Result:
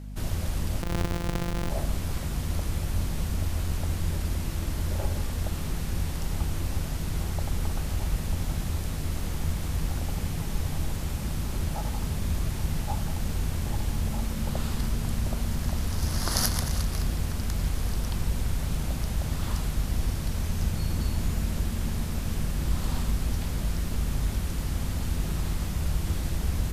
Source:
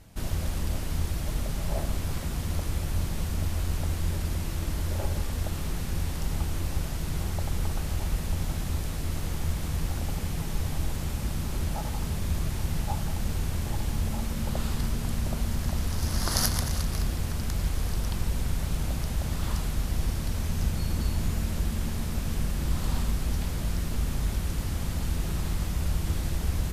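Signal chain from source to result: 0.82–1.70 s: sorted samples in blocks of 256 samples; hum 50 Hz, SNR 11 dB

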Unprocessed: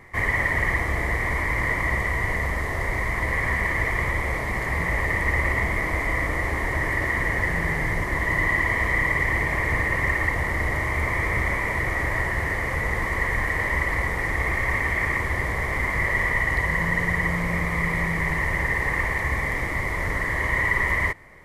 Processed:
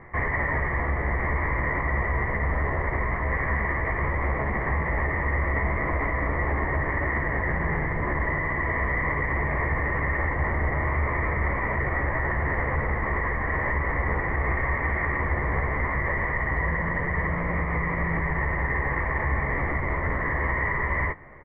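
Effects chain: low-pass 1.8 kHz 24 dB/octave; peak limiter -20.5 dBFS, peak gain reduction 8.5 dB; doubling 14 ms -6.5 dB; trim +2.5 dB

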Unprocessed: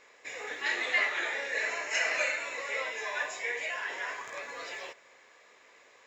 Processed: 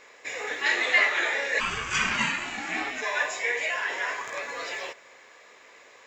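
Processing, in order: 1.59–3.01 s: ring modulator 690 Hz -> 180 Hz; trim +6.5 dB

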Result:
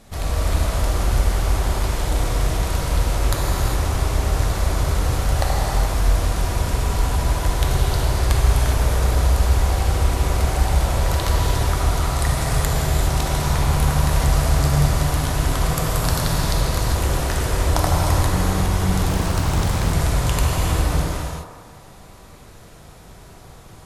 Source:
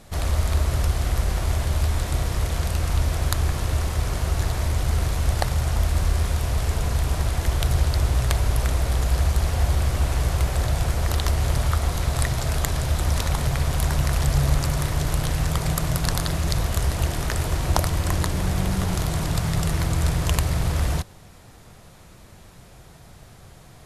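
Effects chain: feedback echo behind a band-pass 79 ms, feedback 71%, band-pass 630 Hz, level -3.5 dB; gated-style reverb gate 440 ms flat, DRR -3 dB; 19.09–19.93 s: loudspeaker Doppler distortion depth 1 ms; trim -1.5 dB

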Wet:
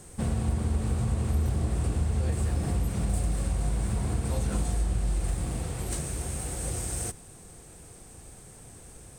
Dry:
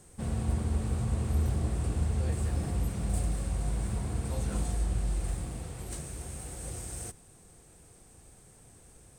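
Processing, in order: compression 2.5:1, threshold -33 dBFS, peak gain reduction 7 dB; trim +7.5 dB

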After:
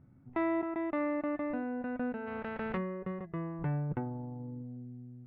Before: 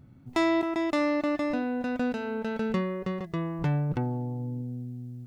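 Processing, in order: 2.26–2.76 s: spectral contrast reduction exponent 0.48; 3.91–4.77 s: transient shaper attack +3 dB, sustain -9 dB; low-pass 2.1 kHz 24 dB/octave; hum notches 60/120 Hz; trim -6.5 dB

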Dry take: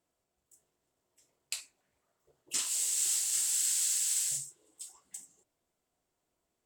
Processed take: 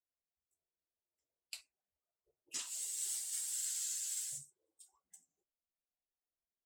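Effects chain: expander on every frequency bin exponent 1.5; vibrato 0.7 Hz 59 cents; trim -7 dB

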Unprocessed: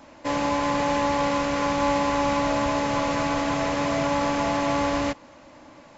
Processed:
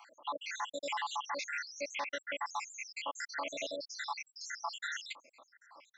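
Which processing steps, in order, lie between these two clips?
random holes in the spectrogram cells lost 82%; high-pass 910 Hz 12 dB/octave; peak limiter -27.5 dBFS, peak gain reduction 7 dB

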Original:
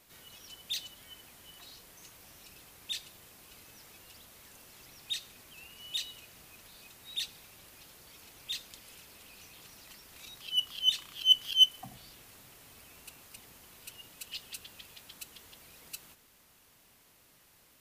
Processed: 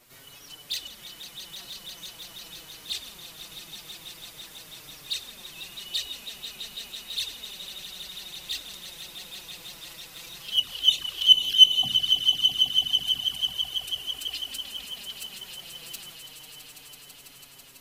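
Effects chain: echo with a slow build-up 165 ms, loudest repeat 5, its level -10.5 dB; touch-sensitive flanger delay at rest 8.5 ms, full sweep at -24 dBFS; trim +7.5 dB

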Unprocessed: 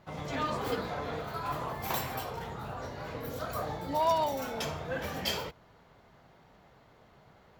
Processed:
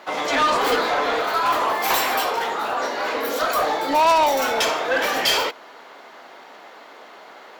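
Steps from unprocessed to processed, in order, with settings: Chebyshev high-pass 270 Hz, order 3; overdrive pedal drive 19 dB, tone 6.8 kHz, clips at -17.5 dBFS; trim +7.5 dB

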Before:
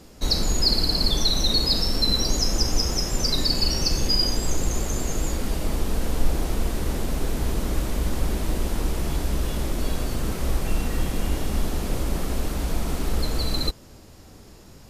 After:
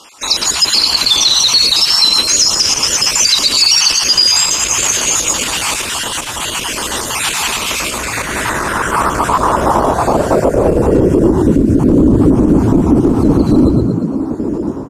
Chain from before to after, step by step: random holes in the spectrogram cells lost 38%; band-stop 740 Hz, Q 16; level rider gain up to 13 dB; graphic EQ 125/500/1000/2000/4000/8000 Hz -7/-3/+9/-7/-8/+8 dB; compression, threshold -13 dBFS, peak gain reduction 8 dB; frequency-shifting echo 114 ms, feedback 53%, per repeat +51 Hz, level -9 dB; saturation -8.5 dBFS, distortion -21 dB; band-pass sweep 2.8 kHz -> 290 Hz, 7.72–11.66 s; dynamic bell 980 Hz, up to -7 dB, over -51 dBFS, Q 0.76; loudness maximiser +28 dB; MP3 112 kbps 48 kHz

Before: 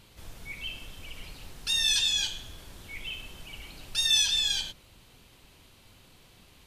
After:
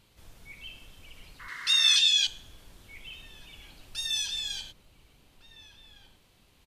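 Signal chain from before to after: echo from a far wall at 250 m, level -8 dB; 1.39–1.97 s: painted sound noise 960–2200 Hz -39 dBFS; 1.48–2.27 s: frequency weighting D; trim -7 dB

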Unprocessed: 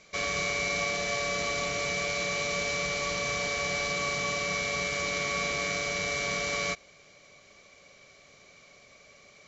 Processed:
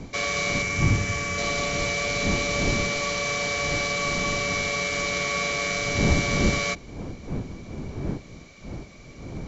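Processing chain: wind noise 240 Hz -35 dBFS; 0.62–1.38 s: fifteen-band graphic EQ 100 Hz +10 dB, 630 Hz -9 dB, 4 kHz -8 dB; trim +4 dB

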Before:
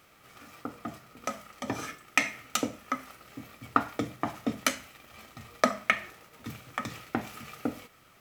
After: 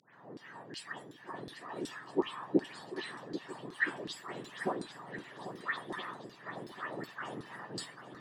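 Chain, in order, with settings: spectrum inverted on a logarithmic axis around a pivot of 1.5 kHz; 2.65–3.36 s: peaking EQ 4.3 kHz +8 dB 1.2 oct; harmonic-percussive split harmonic -8 dB; bass shelf 260 Hz +8 dB; in parallel at +3 dB: compressor with a negative ratio -44 dBFS, ratio -1; on the sum: phase dispersion highs, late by 142 ms, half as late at 1.9 kHz; wow and flutter 24 cents; LFO band-pass saw down 2.7 Hz 310–4800 Hz; on a send: shuffle delay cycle 1320 ms, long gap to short 1.5:1, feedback 37%, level -12 dB; on the sum: trim +1 dB

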